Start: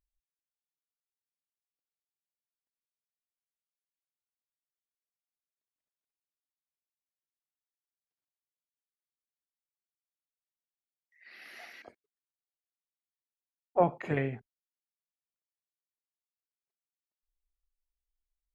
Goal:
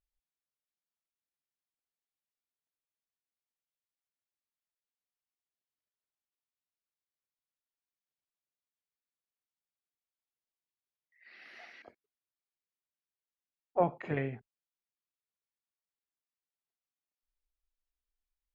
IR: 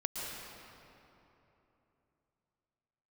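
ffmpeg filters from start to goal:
-af "lowpass=4.7k,volume=-3dB"

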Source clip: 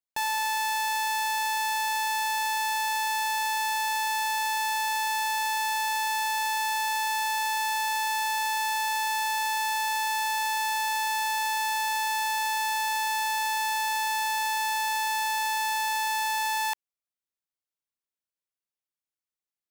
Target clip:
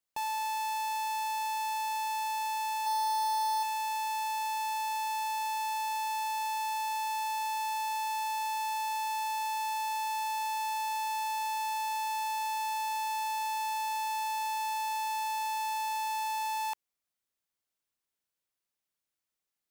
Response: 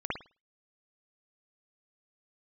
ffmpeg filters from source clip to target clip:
-filter_complex "[0:a]asoftclip=type=tanh:threshold=-36.5dB,asettb=1/sr,asplit=3[a][b][c];[a]atrim=end=2.864[d];[b]atrim=start=2.86:end=3.63,asetpts=PTS-STARTPTS,afade=t=in:d=0.004:c=qsin,afade=t=out:st=0.766:d=0.004:c=qsin,aecho=1:1:2.5:0.83,atrim=end_sample=33957[e];[c]atrim=start=3.626[f];[d][e]acrossfade=d=0.004:c1=hsin:c2=qsin[g];[g][f]acrossfade=d=0.004:c1=qsin:c2=hsin,volume=4.5dB"

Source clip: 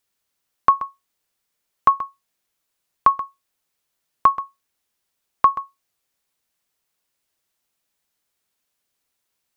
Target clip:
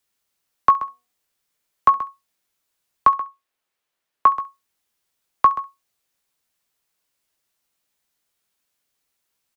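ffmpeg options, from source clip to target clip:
-filter_complex "[0:a]asettb=1/sr,asplit=3[a][b][c];[a]atrim=end=0.724[d];[b]atrim=start=0.72:end=1.98,asetpts=PTS-STARTPTS,afade=t=in:d=0.004:c=qsin,afade=t=out:st=1.256:d=0.004:c=qsin,bandreject=f=243.1:t=h:w=4,bandreject=f=486.2:t=h:w=4,bandreject=f=729.3:t=h:w=4[e];[c]atrim=start=1.976[f];[d][e]acrossfade=d=0.004:c1=hsin:c2=qsin[g];[g][f]acrossfade=d=0.004:c1=qsin:c2=hsin,asettb=1/sr,asplit=3[h][i][j];[h]atrim=end=3.094[k];[i]atrim=start=3.09:end=4.31,asetpts=PTS-STARTPTS,afade=t=in:d=0.004:c=qsin,afade=t=out:st=1.216:d=0.004:c=qsin,bass=f=250:g=-8,treble=f=4k:g=-8[l];[j]atrim=start=4.306[m];[k][l]acrossfade=d=0.004:c1=hsin:c2=qsin[n];[n][m]acrossfade=d=0.004:c1=qsin:c2=hsin,acrossover=split=220|280|870[o][p][q][r];[r]aecho=1:1:18|68:0.447|0.133[s];[o][p][q][s]amix=inputs=4:normalize=0"

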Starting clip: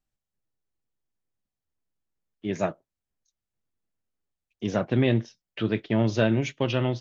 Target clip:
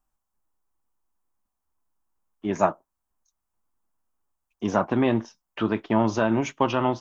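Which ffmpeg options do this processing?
-af "alimiter=limit=-14dB:level=0:latency=1:release=124,equalizer=f=125:t=o:w=1:g=-12,equalizer=f=500:t=o:w=1:g=-7,equalizer=f=1k:t=o:w=1:g=11,equalizer=f=2k:t=o:w=1:g=-7,equalizer=f=4k:t=o:w=1:g=-10,volume=7dB"

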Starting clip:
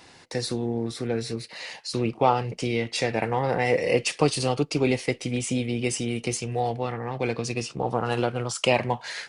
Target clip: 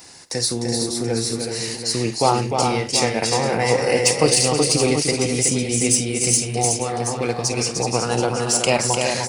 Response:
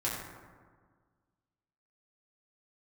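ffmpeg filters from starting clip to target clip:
-af "aecho=1:1:50|302|373|479|730:0.188|0.531|0.501|0.168|0.316,aexciter=amount=2.6:drive=8.4:freq=4.7k,volume=2.5dB"

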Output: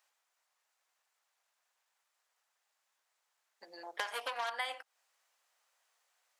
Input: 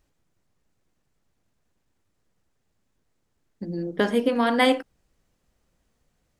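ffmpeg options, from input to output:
-filter_complex "[0:a]asettb=1/sr,asplit=3[a][b][c];[a]atrim=end=3.834[d];[b]atrim=start=3.83:end=4.5,asetpts=PTS-STARTPTS,afade=t=in:d=0.004:c=qsin,afade=t=out:st=0.666:d=0.004:c=qsin,aeval=exprs='0.376*(cos(1*acos(clip(val(0)/0.376,-1,1)))-cos(1*PI/2))+0.0473*(cos(8*acos(clip(val(0)/0.376,-1,1)))-cos(8*PI/2))':c=same[e];[c]atrim=start=4.496[f];[d][e]acrossfade=d=0.004:c1=hsin:c2=qsin[g];[g][f]acrossfade=d=0.004:c1=qsin:c2=hsin,highpass=f=760:w=0.5412,highpass=f=760:w=1.3066,acompressor=threshold=-37dB:ratio=5,volume=1dB"

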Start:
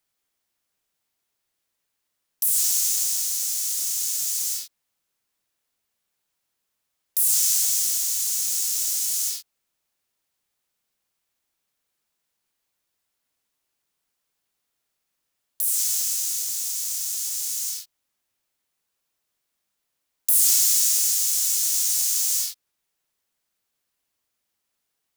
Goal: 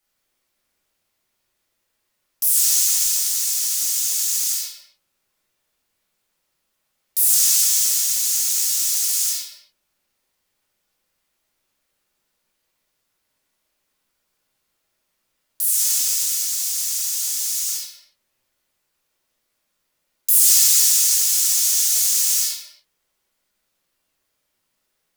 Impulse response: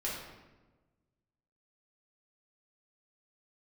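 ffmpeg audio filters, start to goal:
-filter_complex "[0:a]asettb=1/sr,asplit=3[a][b][c];[a]atrim=end=7.394[d];[b]atrim=start=7.39:end=7.95,asetpts=PTS-STARTPTS,afade=t=in:d=0.004:c=qsin,afade=t=out:st=0.556:d=0.004:c=qsin,highpass=440[e];[c]atrim=start=7.946[f];[d][e]acrossfade=d=0.004:c1=hsin:c2=qsin[g];[g][f]acrossfade=d=0.004:c1=qsin:c2=hsin[h];[1:a]atrim=start_sample=2205,afade=t=out:st=0.36:d=0.01,atrim=end_sample=16317,asetrate=43659,aresample=44100[i];[h][i]afir=irnorm=-1:irlink=0,volume=3.5dB"

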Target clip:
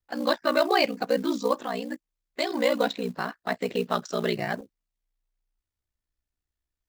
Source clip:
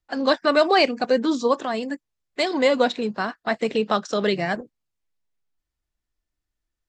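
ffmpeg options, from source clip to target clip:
-af "aeval=exprs='val(0)*sin(2*PI*30*n/s)':c=same,acrusher=bits=6:mode=log:mix=0:aa=0.000001,volume=-2dB"

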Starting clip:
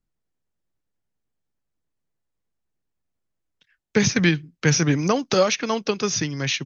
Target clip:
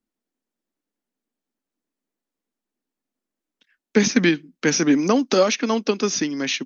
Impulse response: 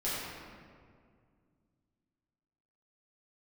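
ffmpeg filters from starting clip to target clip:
-af "lowshelf=f=170:t=q:w=3:g=-12.5"

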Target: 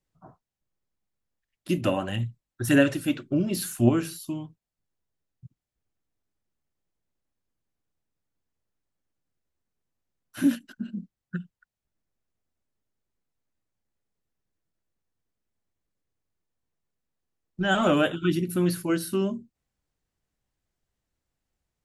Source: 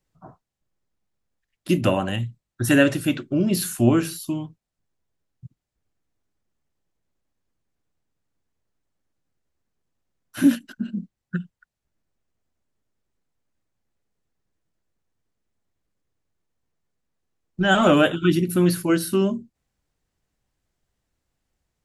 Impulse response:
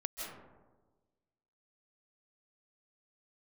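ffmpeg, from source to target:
-filter_complex "[0:a]asplit=3[a][b][c];[a]afade=t=out:st=1.76:d=0.02[d];[b]aphaser=in_gain=1:out_gain=1:delay=3.9:decay=0.36:speed=1.8:type=sinusoidal,afade=t=in:st=1.76:d=0.02,afade=t=out:st=3.88:d=0.02[e];[c]afade=t=in:st=3.88:d=0.02[f];[d][e][f]amix=inputs=3:normalize=0,volume=-5.5dB"

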